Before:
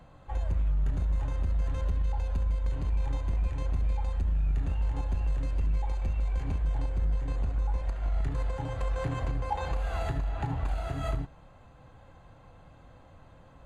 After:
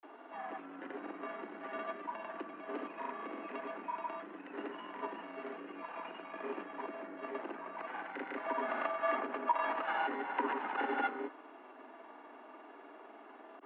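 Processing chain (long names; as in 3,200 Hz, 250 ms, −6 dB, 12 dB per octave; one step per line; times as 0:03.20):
dynamic equaliser 1,300 Hz, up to +6 dB, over −54 dBFS, Q 0.8
downward compressor, threshold −31 dBFS, peak gain reduction 9.5 dB
granular cloud, pitch spread up and down by 0 semitones
single-sideband voice off tune +130 Hz 170–2,900 Hz
level +5.5 dB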